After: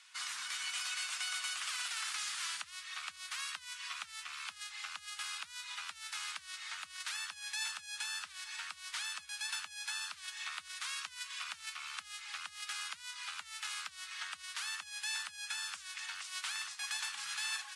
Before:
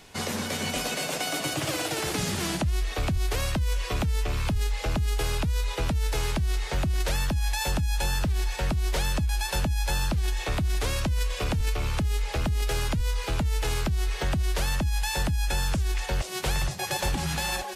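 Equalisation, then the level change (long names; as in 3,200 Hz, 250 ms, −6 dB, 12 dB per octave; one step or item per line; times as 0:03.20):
elliptic band-pass filter 1,200–9,900 Hz, stop band 40 dB
−6.0 dB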